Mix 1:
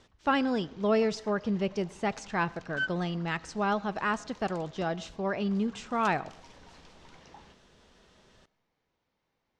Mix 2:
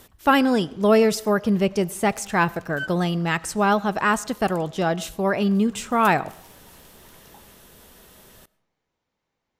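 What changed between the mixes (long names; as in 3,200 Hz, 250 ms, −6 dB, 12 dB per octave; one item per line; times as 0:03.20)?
speech +9.0 dB
master: remove low-pass filter 6,200 Hz 24 dB per octave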